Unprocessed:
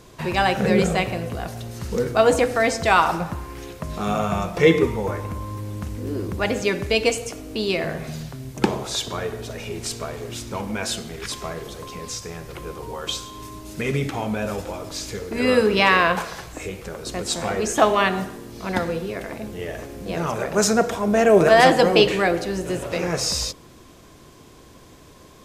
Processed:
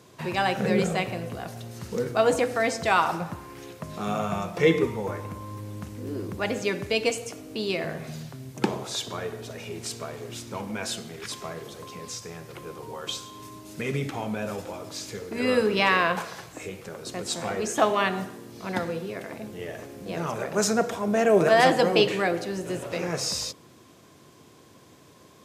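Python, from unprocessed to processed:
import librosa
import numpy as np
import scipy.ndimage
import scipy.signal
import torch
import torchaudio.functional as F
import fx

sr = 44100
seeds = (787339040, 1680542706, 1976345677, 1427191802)

y = scipy.signal.sosfilt(scipy.signal.butter(4, 94.0, 'highpass', fs=sr, output='sos'), x)
y = y * 10.0 ** (-5.0 / 20.0)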